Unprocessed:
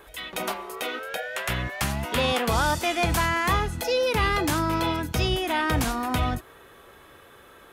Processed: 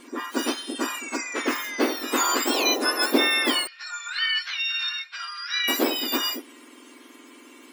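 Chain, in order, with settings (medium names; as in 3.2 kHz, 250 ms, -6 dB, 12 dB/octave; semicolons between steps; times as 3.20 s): spectrum inverted on a logarithmic axis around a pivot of 1.9 kHz; 3.67–5.68 s: elliptic band-pass 1.5–5.2 kHz, stop band 80 dB; trim +4 dB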